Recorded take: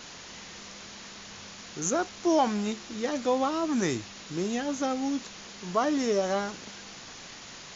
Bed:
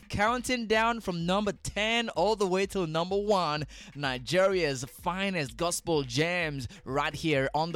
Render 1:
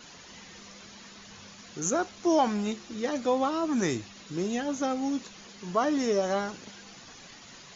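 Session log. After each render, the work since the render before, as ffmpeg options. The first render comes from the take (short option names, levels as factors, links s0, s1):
-af "afftdn=nr=8:nf=-45"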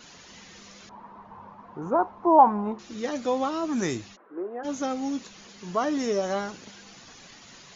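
-filter_complex "[0:a]asettb=1/sr,asplit=3[s0][s1][s2];[s0]atrim=end=0.894[s3];[s1]atrim=start=0.89:end=2.79,asetpts=PTS-STARTPTS,afade=t=in:d=0.004:c=qsin,afade=t=out:st=1.896:d=0.004:c=qsin,lowpass=f=960:t=q:w=6.2[s4];[s2]atrim=start=2.786[s5];[s3][s4]acrossfade=d=0.004:c1=hsin:c2=qsin[s6];[s6][s5]acrossfade=d=0.004:c1=qsin:c2=hsin,asplit=3[s7][s8][s9];[s7]afade=t=out:st=4.15:d=0.02[s10];[s8]asuperpass=centerf=690:order=8:qfactor=0.58,afade=t=in:st=4.15:d=0.02,afade=t=out:st=4.63:d=0.02[s11];[s9]afade=t=in:st=4.63:d=0.02[s12];[s10][s11][s12]amix=inputs=3:normalize=0"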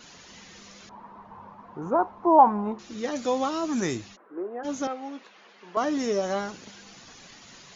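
-filter_complex "[0:a]asettb=1/sr,asplit=3[s0][s1][s2];[s0]atrim=end=3.164[s3];[s1]atrim=start=3.16:end=3.8,asetpts=PTS-STARTPTS,afade=t=in:d=0.004:c=qsin,afade=t=out:st=0.636:d=0.004:c=qsin,highshelf=f=4600:g=7.5[s4];[s2]atrim=start=3.796[s5];[s3][s4]acrossfade=d=0.004:c1=hsin:c2=qsin[s6];[s6][s5]acrossfade=d=0.004:c1=qsin:c2=hsin,asettb=1/sr,asplit=3[s7][s8][s9];[s7]atrim=end=4.874[s10];[s8]atrim=start=4.87:end=5.77,asetpts=PTS-STARTPTS,afade=t=in:d=0.004:c=qsin,afade=t=out:st=0.896:d=0.004:c=qsin,highpass=470,lowpass=2600[s11];[s9]atrim=start=5.766[s12];[s10][s11]acrossfade=d=0.004:c1=hsin:c2=qsin[s13];[s13][s12]acrossfade=d=0.004:c1=qsin:c2=hsin"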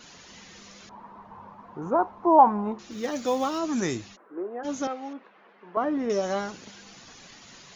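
-filter_complex "[0:a]asettb=1/sr,asplit=3[s0][s1][s2];[s0]atrim=end=2.914[s3];[s1]atrim=start=2.91:end=3.59,asetpts=PTS-STARTPTS,afade=t=in:d=0.004:c=qsin,afade=t=out:st=0.676:d=0.004:c=qsin,acrusher=bits=8:mode=log:mix=0:aa=0.000001[s4];[s2]atrim=start=3.586[s5];[s3][s4]acrossfade=d=0.004:c1=hsin:c2=qsin[s6];[s6][s5]acrossfade=d=0.004:c1=qsin:c2=hsin,asettb=1/sr,asplit=3[s7][s8][s9];[s7]atrim=end=5.134[s10];[s8]atrim=start=5.13:end=6.1,asetpts=PTS-STARTPTS,afade=t=in:d=0.004:c=qsin,afade=t=out:st=0.966:d=0.004:c=qsin,lowpass=1700[s11];[s9]atrim=start=6.096[s12];[s10][s11]acrossfade=d=0.004:c1=hsin:c2=qsin[s13];[s13][s12]acrossfade=d=0.004:c1=qsin:c2=hsin"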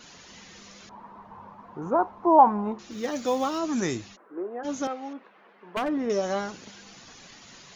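-filter_complex "[0:a]asplit=3[s0][s1][s2];[s0]afade=t=out:st=4.85:d=0.02[s3];[s1]aeval=exprs='0.0841*(abs(mod(val(0)/0.0841+3,4)-2)-1)':c=same,afade=t=in:st=4.85:d=0.02,afade=t=out:st=5.88:d=0.02[s4];[s2]afade=t=in:st=5.88:d=0.02[s5];[s3][s4][s5]amix=inputs=3:normalize=0"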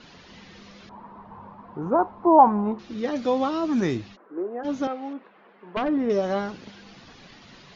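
-af "lowpass=f=4800:w=0.5412,lowpass=f=4800:w=1.3066,lowshelf=f=500:g=5.5"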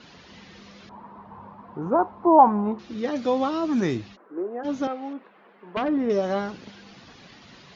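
-af "highpass=43"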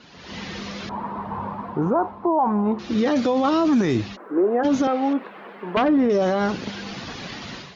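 -af "dynaudnorm=f=110:g=5:m=5.01,alimiter=limit=0.237:level=0:latency=1:release=26"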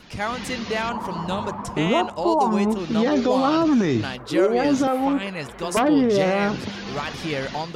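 -filter_complex "[1:a]volume=0.944[s0];[0:a][s0]amix=inputs=2:normalize=0"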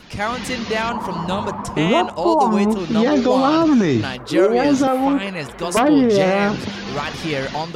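-af "volume=1.58"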